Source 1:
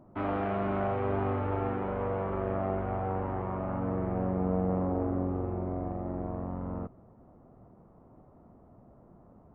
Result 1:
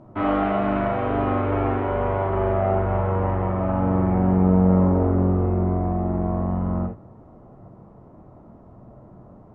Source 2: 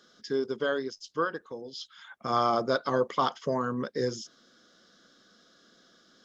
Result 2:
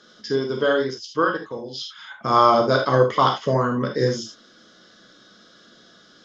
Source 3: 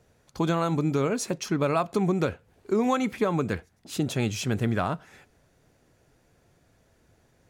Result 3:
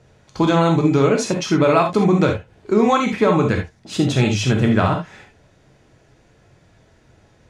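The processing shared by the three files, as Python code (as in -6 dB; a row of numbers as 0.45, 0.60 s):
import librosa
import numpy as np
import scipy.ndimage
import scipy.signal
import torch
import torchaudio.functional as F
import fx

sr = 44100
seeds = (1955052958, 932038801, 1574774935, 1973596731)

y = scipy.signal.sosfilt(scipy.signal.butter(2, 6300.0, 'lowpass', fs=sr, output='sos'), x)
y = fx.rev_gated(y, sr, seeds[0], gate_ms=100, shape='flat', drr_db=1.5)
y = y * librosa.db_to_amplitude(7.5)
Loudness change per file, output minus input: +10.5, +9.5, +9.5 LU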